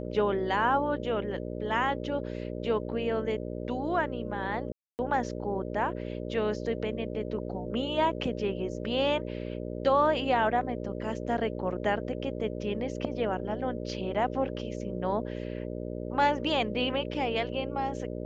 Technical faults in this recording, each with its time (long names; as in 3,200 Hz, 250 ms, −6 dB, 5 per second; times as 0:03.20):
mains buzz 60 Hz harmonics 10 −36 dBFS
0:04.72–0:04.99: drop-out 269 ms